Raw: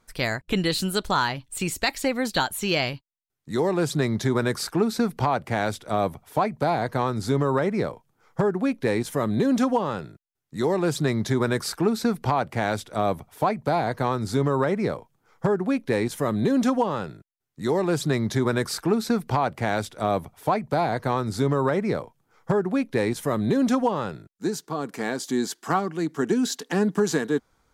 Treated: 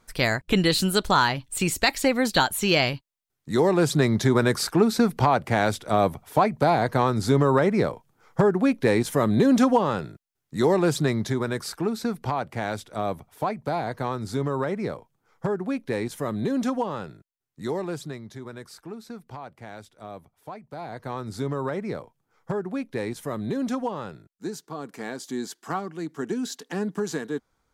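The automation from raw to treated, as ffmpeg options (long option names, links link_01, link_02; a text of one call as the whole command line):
ffmpeg -i in.wav -af "volume=13dB,afade=type=out:start_time=10.72:duration=0.71:silence=0.446684,afade=type=out:start_time=17.62:duration=0.6:silence=0.251189,afade=type=in:start_time=20.7:duration=0.64:silence=0.316228" out.wav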